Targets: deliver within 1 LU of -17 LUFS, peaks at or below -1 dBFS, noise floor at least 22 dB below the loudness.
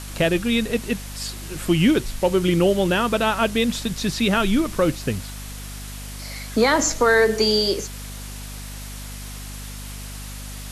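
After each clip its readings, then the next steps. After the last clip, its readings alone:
hum 50 Hz; highest harmonic 250 Hz; hum level -33 dBFS; noise floor -35 dBFS; noise floor target -43 dBFS; loudness -20.5 LUFS; peak level -6.0 dBFS; loudness target -17.0 LUFS
-> de-hum 50 Hz, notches 5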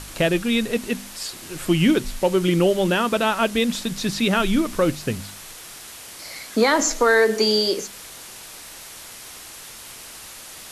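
hum not found; noise floor -40 dBFS; noise floor target -43 dBFS
-> noise reduction 6 dB, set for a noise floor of -40 dBFS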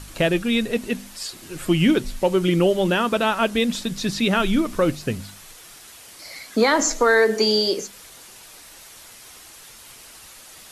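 noise floor -45 dBFS; loudness -21.0 LUFS; peak level -6.0 dBFS; loudness target -17.0 LUFS
-> trim +4 dB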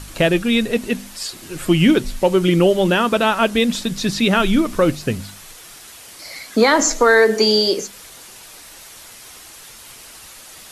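loudness -17.0 LUFS; peak level -2.0 dBFS; noise floor -41 dBFS

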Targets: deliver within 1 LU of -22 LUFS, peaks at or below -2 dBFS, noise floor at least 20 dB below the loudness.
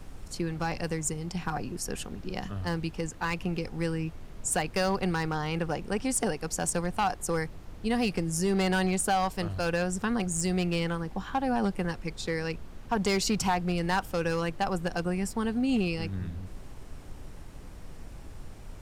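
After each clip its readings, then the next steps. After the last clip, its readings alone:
clipped samples 0.6%; clipping level -20.0 dBFS; noise floor -45 dBFS; noise floor target -50 dBFS; loudness -30.0 LUFS; peak level -20.0 dBFS; loudness target -22.0 LUFS
-> clip repair -20 dBFS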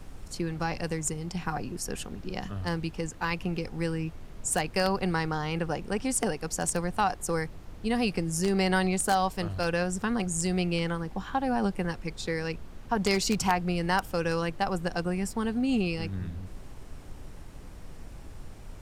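clipped samples 0.0%; noise floor -45 dBFS; noise floor target -50 dBFS
-> noise print and reduce 6 dB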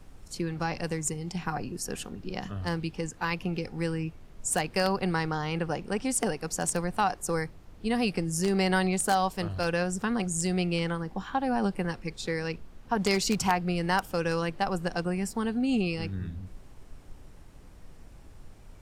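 noise floor -50 dBFS; loudness -30.0 LUFS; peak level -11.0 dBFS; loudness target -22.0 LUFS
-> trim +8 dB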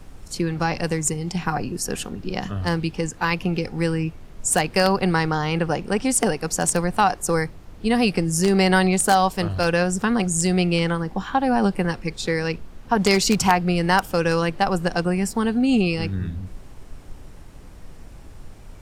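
loudness -22.0 LUFS; peak level -3.0 dBFS; noise floor -42 dBFS

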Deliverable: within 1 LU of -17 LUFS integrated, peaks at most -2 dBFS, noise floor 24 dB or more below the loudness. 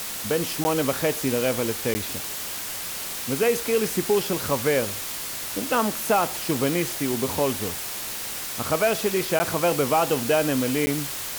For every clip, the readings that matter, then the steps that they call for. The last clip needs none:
dropouts 4; longest dropout 10 ms; noise floor -32 dBFS; noise floor target -48 dBFS; loudness -24.0 LUFS; peak level -9.5 dBFS; loudness target -17.0 LUFS
-> interpolate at 0.64/1.94/9.39/10.86 s, 10 ms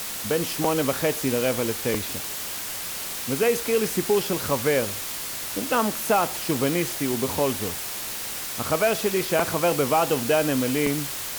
dropouts 0; noise floor -32 dBFS; noise floor target -48 dBFS
-> noise reduction 16 dB, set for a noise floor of -32 dBFS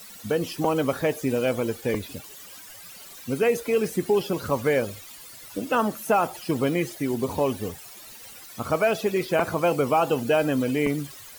noise floor -44 dBFS; noise floor target -49 dBFS
-> noise reduction 6 dB, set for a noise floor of -44 dBFS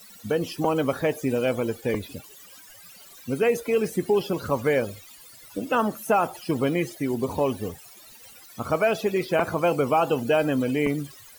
noise floor -48 dBFS; noise floor target -49 dBFS
-> noise reduction 6 dB, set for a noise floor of -48 dBFS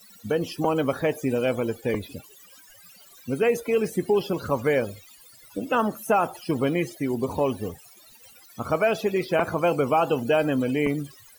noise floor -52 dBFS; loudness -25.0 LUFS; peak level -8.5 dBFS; loudness target -17.0 LUFS
-> trim +8 dB; peak limiter -2 dBFS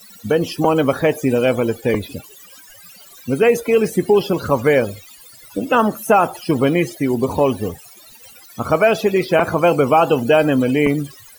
loudness -17.0 LUFS; peak level -2.0 dBFS; noise floor -44 dBFS

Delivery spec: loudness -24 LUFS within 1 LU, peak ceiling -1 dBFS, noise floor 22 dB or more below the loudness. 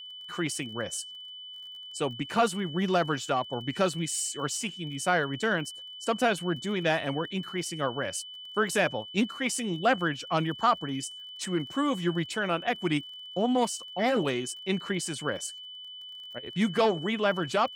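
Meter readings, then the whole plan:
tick rate 27 per s; steady tone 3 kHz; tone level -41 dBFS; loudness -29.5 LUFS; peak level -11.0 dBFS; loudness target -24.0 LUFS
-> de-click; band-stop 3 kHz, Q 30; trim +5.5 dB

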